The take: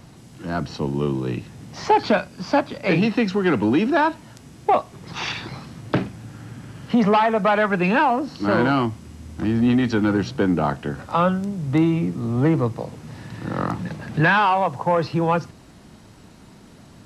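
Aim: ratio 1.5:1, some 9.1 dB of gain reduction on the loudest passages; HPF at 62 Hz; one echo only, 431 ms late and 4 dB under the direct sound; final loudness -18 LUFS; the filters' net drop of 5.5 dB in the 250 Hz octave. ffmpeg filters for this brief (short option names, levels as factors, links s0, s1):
-af "highpass=62,equalizer=f=250:t=o:g=-7.5,acompressor=threshold=0.01:ratio=1.5,aecho=1:1:431:0.631,volume=4.22"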